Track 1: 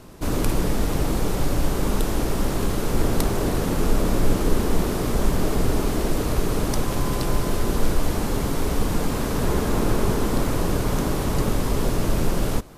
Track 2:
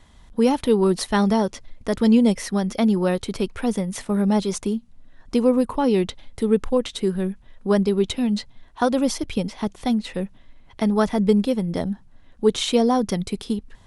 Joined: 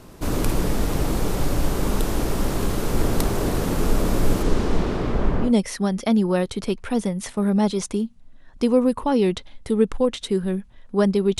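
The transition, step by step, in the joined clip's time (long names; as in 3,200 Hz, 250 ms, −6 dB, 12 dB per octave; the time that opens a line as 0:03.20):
track 1
0:04.42–0:05.53: low-pass filter 8,000 Hz → 1,600 Hz
0:05.47: continue with track 2 from 0:02.19, crossfade 0.12 s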